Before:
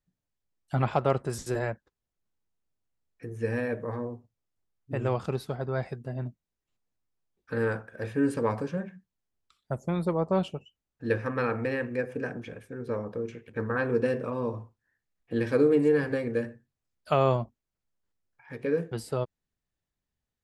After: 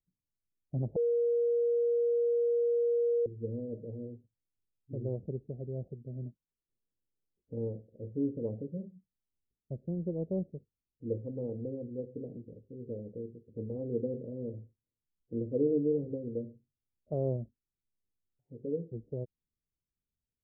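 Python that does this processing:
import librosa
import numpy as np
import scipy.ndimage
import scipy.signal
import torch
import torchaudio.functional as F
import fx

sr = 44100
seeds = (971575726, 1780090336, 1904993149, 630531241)

y = fx.envelope_flatten(x, sr, power=0.6, at=(6.22, 7.85), fade=0.02)
y = fx.edit(y, sr, fx.bleep(start_s=0.96, length_s=2.3, hz=473.0, db=-18.0), tone=tone)
y = fx.wiener(y, sr, points=41)
y = scipy.signal.sosfilt(scipy.signal.butter(6, 560.0, 'lowpass', fs=sr, output='sos'), y)
y = y * 10.0 ** (-5.5 / 20.0)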